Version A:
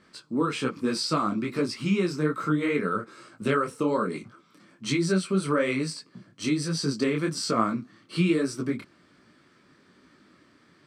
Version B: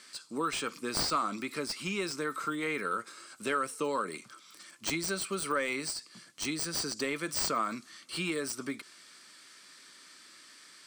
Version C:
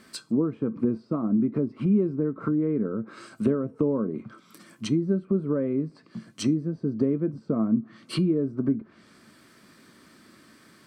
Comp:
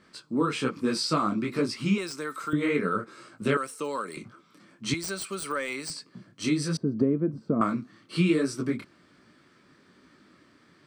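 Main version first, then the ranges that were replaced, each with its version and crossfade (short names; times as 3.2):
A
1.98–2.53 from B
3.57–4.17 from B
4.94–5.9 from B
6.77–7.61 from C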